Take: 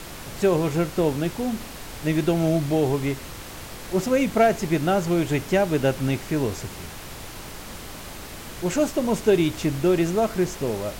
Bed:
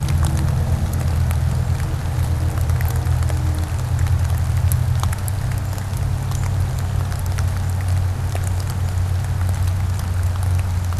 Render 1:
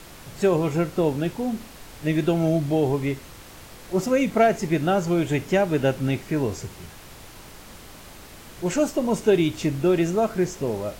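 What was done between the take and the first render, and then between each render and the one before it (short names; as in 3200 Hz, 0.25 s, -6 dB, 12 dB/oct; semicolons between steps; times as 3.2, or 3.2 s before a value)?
noise print and reduce 6 dB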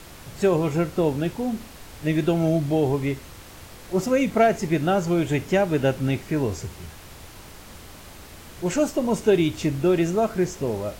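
bell 78 Hz +6 dB 0.56 oct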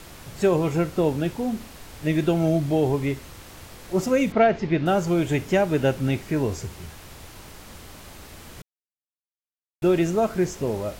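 4.32–4.86 LPF 4400 Hz 24 dB/oct; 8.62–9.82 mute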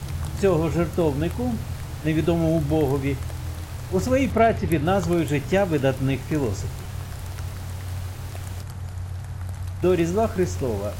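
add bed -12 dB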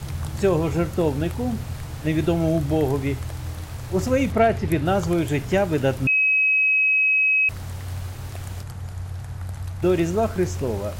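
6.07–7.49 bleep 2550 Hz -15.5 dBFS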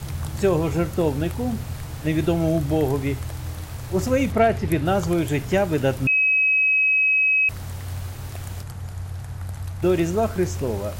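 high shelf 11000 Hz +5 dB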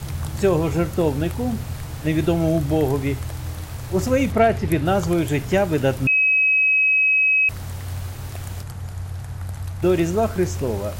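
gain +1.5 dB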